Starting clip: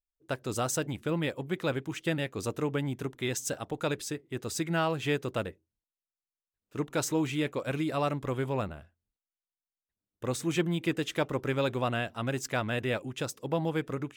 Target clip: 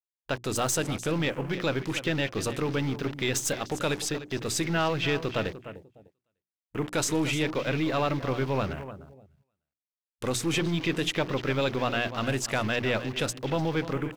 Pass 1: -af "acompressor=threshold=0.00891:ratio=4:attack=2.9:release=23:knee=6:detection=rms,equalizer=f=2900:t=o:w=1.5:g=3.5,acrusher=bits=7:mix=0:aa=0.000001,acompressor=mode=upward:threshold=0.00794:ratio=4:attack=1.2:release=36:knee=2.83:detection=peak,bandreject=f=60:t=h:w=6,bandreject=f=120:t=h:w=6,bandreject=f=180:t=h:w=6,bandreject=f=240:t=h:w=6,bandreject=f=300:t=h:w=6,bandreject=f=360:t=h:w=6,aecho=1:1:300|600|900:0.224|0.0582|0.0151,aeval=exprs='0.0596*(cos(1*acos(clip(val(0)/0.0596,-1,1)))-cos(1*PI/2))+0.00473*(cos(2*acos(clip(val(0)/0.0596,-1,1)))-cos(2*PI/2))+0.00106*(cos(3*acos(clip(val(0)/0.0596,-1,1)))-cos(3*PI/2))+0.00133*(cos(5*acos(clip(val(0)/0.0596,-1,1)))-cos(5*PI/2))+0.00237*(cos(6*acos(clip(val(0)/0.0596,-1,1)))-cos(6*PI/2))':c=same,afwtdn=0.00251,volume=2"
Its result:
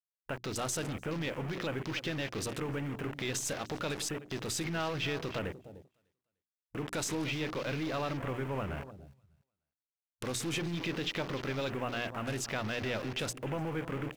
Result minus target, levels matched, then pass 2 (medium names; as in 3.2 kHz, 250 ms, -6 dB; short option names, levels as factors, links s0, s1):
compression: peak gain reduction +9 dB
-af "acompressor=threshold=0.0355:ratio=4:attack=2.9:release=23:knee=6:detection=rms,equalizer=f=2900:t=o:w=1.5:g=3.5,acrusher=bits=7:mix=0:aa=0.000001,acompressor=mode=upward:threshold=0.00794:ratio=4:attack=1.2:release=36:knee=2.83:detection=peak,bandreject=f=60:t=h:w=6,bandreject=f=120:t=h:w=6,bandreject=f=180:t=h:w=6,bandreject=f=240:t=h:w=6,bandreject=f=300:t=h:w=6,bandreject=f=360:t=h:w=6,aecho=1:1:300|600|900:0.224|0.0582|0.0151,aeval=exprs='0.0596*(cos(1*acos(clip(val(0)/0.0596,-1,1)))-cos(1*PI/2))+0.00473*(cos(2*acos(clip(val(0)/0.0596,-1,1)))-cos(2*PI/2))+0.00106*(cos(3*acos(clip(val(0)/0.0596,-1,1)))-cos(3*PI/2))+0.00133*(cos(5*acos(clip(val(0)/0.0596,-1,1)))-cos(5*PI/2))+0.00237*(cos(6*acos(clip(val(0)/0.0596,-1,1)))-cos(6*PI/2))':c=same,afwtdn=0.00251,volume=2"